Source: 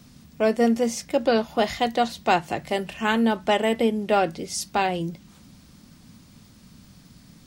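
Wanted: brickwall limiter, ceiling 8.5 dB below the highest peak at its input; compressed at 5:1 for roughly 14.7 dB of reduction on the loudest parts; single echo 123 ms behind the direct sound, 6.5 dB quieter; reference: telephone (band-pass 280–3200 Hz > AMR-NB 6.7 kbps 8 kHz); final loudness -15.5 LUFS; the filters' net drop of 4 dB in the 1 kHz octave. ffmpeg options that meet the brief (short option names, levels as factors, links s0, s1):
-af "equalizer=f=1000:t=o:g=-6,acompressor=threshold=0.02:ratio=5,alimiter=level_in=2.11:limit=0.0631:level=0:latency=1,volume=0.473,highpass=280,lowpass=3200,aecho=1:1:123:0.473,volume=25.1" -ar 8000 -c:a libopencore_amrnb -b:a 6700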